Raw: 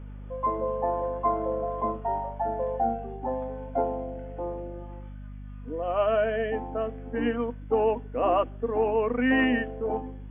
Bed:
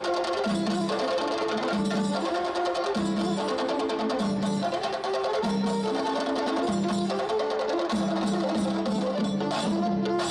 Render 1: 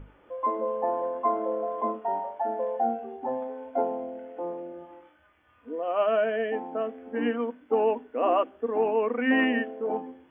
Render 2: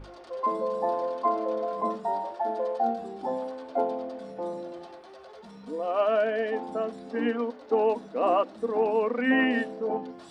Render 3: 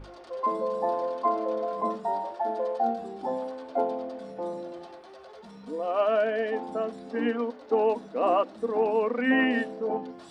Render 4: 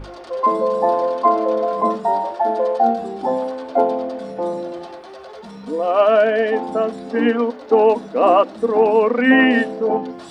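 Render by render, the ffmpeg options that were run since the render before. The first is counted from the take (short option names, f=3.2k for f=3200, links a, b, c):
-af "bandreject=f=50:t=h:w=6,bandreject=f=100:t=h:w=6,bandreject=f=150:t=h:w=6,bandreject=f=200:t=h:w=6,bandreject=f=250:t=h:w=6"
-filter_complex "[1:a]volume=-21dB[a];[0:a][a]amix=inputs=2:normalize=0"
-af anull
-af "volume=10.5dB,alimiter=limit=-3dB:level=0:latency=1"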